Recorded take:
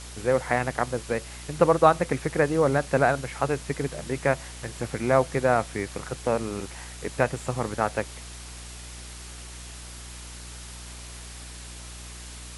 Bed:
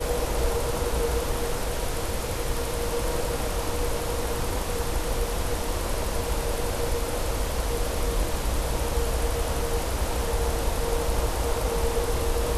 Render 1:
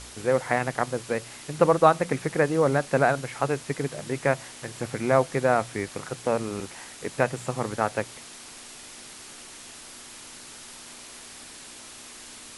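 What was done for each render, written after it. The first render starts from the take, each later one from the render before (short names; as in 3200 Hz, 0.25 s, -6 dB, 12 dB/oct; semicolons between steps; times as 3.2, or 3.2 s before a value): de-hum 60 Hz, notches 3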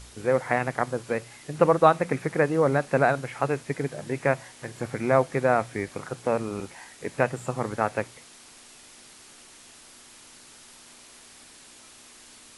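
noise print and reduce 6 dB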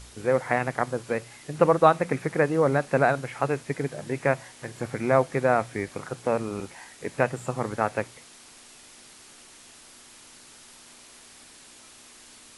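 nothing audible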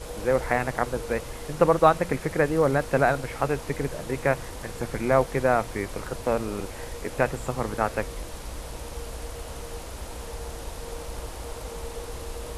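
add bed -10.5 dB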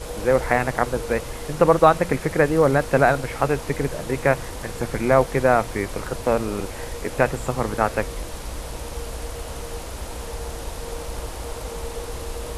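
gain +4.5 dB; limiter -2 dBFS, peak gain reduction 2 dB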